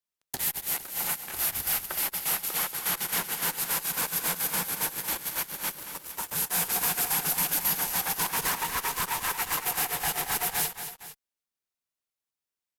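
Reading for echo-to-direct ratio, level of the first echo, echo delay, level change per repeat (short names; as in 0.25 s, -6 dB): -9.0 dB, -10.0 dB, 0.229 s, -6.0 dB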